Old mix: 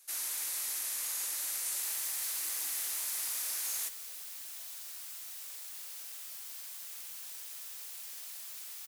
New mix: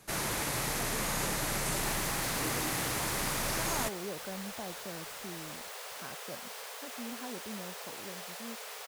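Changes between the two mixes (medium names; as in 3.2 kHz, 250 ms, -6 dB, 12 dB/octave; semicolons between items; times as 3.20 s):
speech +11.0 dB; first sound: remove steep high-pass 230 Hz 72 dB/octave; master: remove differentiator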